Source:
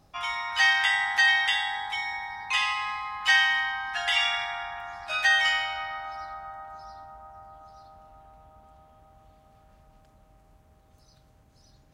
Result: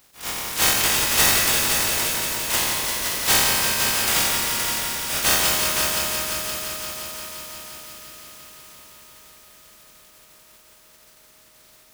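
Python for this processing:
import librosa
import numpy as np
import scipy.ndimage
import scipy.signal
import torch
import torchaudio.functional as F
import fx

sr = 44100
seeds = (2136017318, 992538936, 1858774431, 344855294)

p1 = fx.spec_flatten(x, sr, power=0.12)
p2 = p1 + fx.echo_heads(p1, sr, ms=173, heads='all three', feedback_pct=65, wet_db=-9.0, dry=0)
p3 = fx.attack_slew(p2, sr, db_per_s=180.0)
y = p3 * 10.0 ** (3.5 / 20.0)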